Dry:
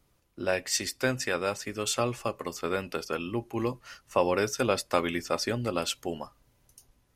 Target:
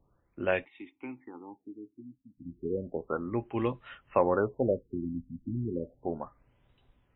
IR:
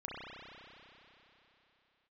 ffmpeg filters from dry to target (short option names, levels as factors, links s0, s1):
-filter_complex "[0:a]asplit=3[s0][s1][s2];[s0]afade=t=out:st=0.64:d=0.02[s3];[s1]asplit=3[s4][s5][s6];[s4]bandpass=f=300:t=q:w=8,volume=1[s7];[s5]bandpass=f=870:t=q:w=8,volume=0.501[s8];[s6]bandpass=f=2240:t=q:w=8,volume=0.355[s9];[s7][s8][s9]amix=inputs=3:normalize=0,afade=t=in:st=0.64:d=0.02,afade=t=out:st=2.37:d=0.02[s10];[s2]afade=t=in:st=2.37:d=0.02[s11];[s3][s10][s11]amix=inputs=3:normalize=0,afftfilt=real='re*lt(b*sr/1024,290*pow(4000/290,0.5+0.5*sin(2*PI*0.33*pts/sr)))':imag='im*lt(b*sr/1024,290*pow(4000/290,0.5+0.5*sin(2*PI*0.33*pts/sr)))':win_size=1024:overlap=0.75"